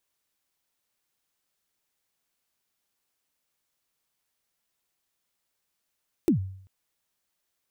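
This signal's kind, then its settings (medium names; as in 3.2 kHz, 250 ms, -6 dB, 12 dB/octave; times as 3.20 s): kick drum length 0.39 s, from 380 Hz, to 95 Hz, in 107 ms, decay 0.62 s, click on, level -15 dB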